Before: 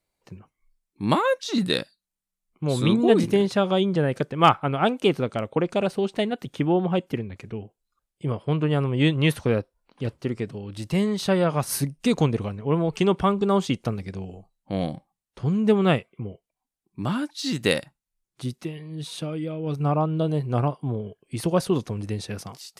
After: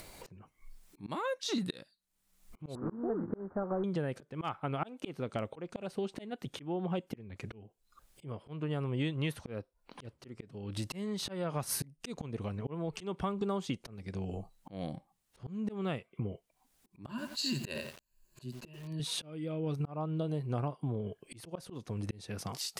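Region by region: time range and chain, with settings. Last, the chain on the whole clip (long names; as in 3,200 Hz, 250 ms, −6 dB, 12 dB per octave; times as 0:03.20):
0:02.75–0:03.84: variable-slope delta modulation 16 kbit/s + Butterworth low-pass 1,500 Hz 48 dB per octave + parametric band 130 Hz −11 dB 0.59 octaves
0:17.09–0:19.00: EQ curve with evenly spaced ripples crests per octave 1.4, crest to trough 13 dB + feedback echo at a low word length 88 ms, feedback 35%, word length 6 bits, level −10 dB
whole clip: upward compression, threshold −27 dBFS; volume swells 485 ms; downward compressor 5 to 1, threshold −30 dBFS; level −1.5 dB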